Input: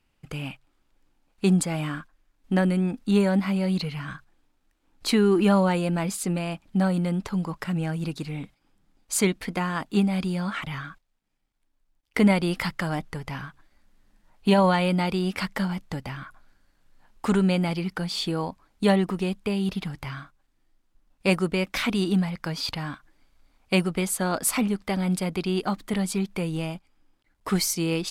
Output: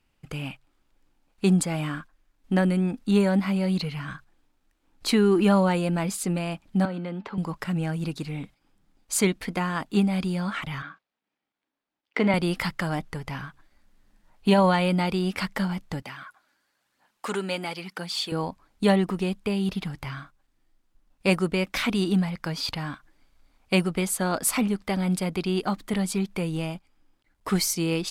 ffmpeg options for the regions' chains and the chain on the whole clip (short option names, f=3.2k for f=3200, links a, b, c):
-filter_complex "[0:a]asettb=1/sr,asplit=3[a][b][c];[a]atrim=end=6.854[d];[b]atrim=start=6.85:end=7.38,asetpts=PTS-STARTPTS,afade=t=in:d=0.004:c=qsin,afade=t=out:st=0.526:d=0.004:c=qsin,acrossover=split=120|3000[e][f][g];[f]acompressor=threshold=-27dB:ratio=2:attack=3.2:release=140:knee=2.83:detection=peak[h];[e][h][g]amix=inputs=3:normalize=0,acrossover=split=190 3700:gain=0.0794 1 0.0794[i][j][k];[i][j][k]amix=inputs=3:normalize=0,bandreject=f=217.8:t=h:w=4,bandreject=f=435.6:t=h:w=4,bandreject=f=653.4:t=h:w=4,bandreject=f=871.2:t=h:w=4,bandreject=f=1.089k:t=h:w=4,bandreject=f=1.3068k:t=h:w=4,bandreject=f=1.5246k:t=h:w=4,bandreject=f=1.7424k:t=h:w=4,bandreject=f=1.9602k:t=h:w=4,bandreject=f=2.178k:t=h:w=4,bandreject=f=2.3958k:t=h:w=4,bandreject=f=2.6136k:t=h:w=4,bandreject=f=2.8314k:t=h:w=4,bandreject=f=3.0492k:t=h:w=4,bandreject=f=3.267k:t=h:w=4,bandreject=f=3.4848k:t=h:w=4,bandreject=f=3.7026k:t=h:w=4,bandreject=f=3.9204k:t=h:w=4,bandreject=f=4.1382k:t=h:w=4,bandreject=f=4.356k:t=h:w=4,bandreject=f=4.5738k:t=h:w=4[l];[c]atrim=start=7.376[m];[d][l]acrossfade=d=0.004:c1=hsin:c2=qsin[n];[n][m]acrossfade=d=0.004:c1=qsin:c2=hsin,asettb=1/sr,asplit=3[o][p][q];[o]atrim=end=10.824[r];[p]atrim=start=10.82:end=12.34,asetpts=PTS-STARTPTS,afade=t=in:d=0.004:c=qsin,afade=t=out:st=1.516:d=0.004:c=qsin,highpass=260,lowpass=3.9k,asplit=2[s][t];[t]adelay=40,volume=-14dB[u];[s][u]amix=inputs=2:normalize=0,atrim=end_sample=67032[v];[q]atrim=start=12.336[w];[r][v]acrossfade=d=0.004:c1=hsin:c2=qsin[x];[x][w]acrossfade=d=0.004:c1=qsin:c2=hsin,asettb=1/sr,asplit=3[y][z][aa];[y]atrim=end=16.024[ab];[z]atrim=start=16.02:end=18.32,asetpts=PTS-STARTPTS,afade=t=in:d=0.004:c=qsin,afade=t=out:st=2.296:d=0.004:c=qsin,highpass=170,lowshelf=f=460:g=-10.5,aphaser=in_gain=1:out_gain=1:delay=3.6:decay=0.35:speed=1:type=triangular[ac];[aa]atrim=start=18.316[ad];[ab][ac]acrossfade=d=0.004:c1=hsin:c2=qsin[ae];[ae][ad]acrossfade=d=0.004:c1=qsin:c2=hsin"